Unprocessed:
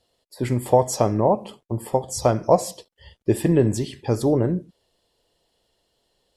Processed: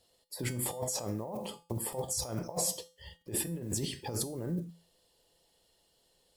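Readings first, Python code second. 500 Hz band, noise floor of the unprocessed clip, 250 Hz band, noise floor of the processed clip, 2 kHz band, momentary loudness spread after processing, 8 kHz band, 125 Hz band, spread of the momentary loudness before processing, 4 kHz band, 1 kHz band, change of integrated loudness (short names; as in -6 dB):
-19.0 dB, -72 dBFS, -15.5 dB, -71 dBFS, -8.0 dB, 9 LU, -1.0 dB, -14.0 dB, 11 LU, -2.5 dB, -19.0 dB, -13.5 dB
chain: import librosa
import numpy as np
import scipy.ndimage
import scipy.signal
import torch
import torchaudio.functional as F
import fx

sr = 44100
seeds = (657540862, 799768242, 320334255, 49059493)

y = fx.block_float(x, sr, bits=7)
y = fx.high_shelf(y, sr, hz=6500.0, db=10.0)
y = fx.over_compress(y, sr, threshold_db=-27.0, ratio=-1.0)
y = fx.comb_fb(y, sr, f0_hz=170.0, decay_s=0.36, harmonics='odd', damping=0.0, mix_pct=70)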